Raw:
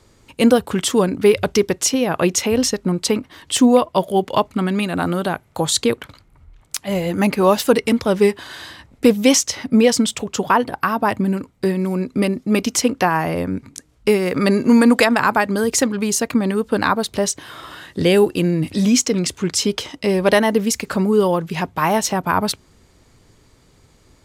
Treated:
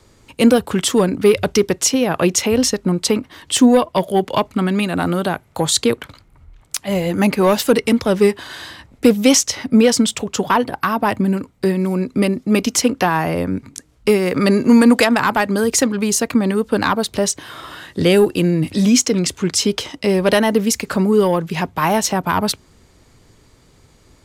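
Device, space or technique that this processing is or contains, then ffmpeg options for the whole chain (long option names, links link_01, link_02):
one-band saturation: -filter_complex "[0:a]acrossover=split=330|3500[link_01][link_02][link_03];[link_02]asoftclip=type=tanh:threshold=-10.5dB[link_04];[link_01][link_04][link_03]amix=inputs=3:normalize=0,volume=2dB"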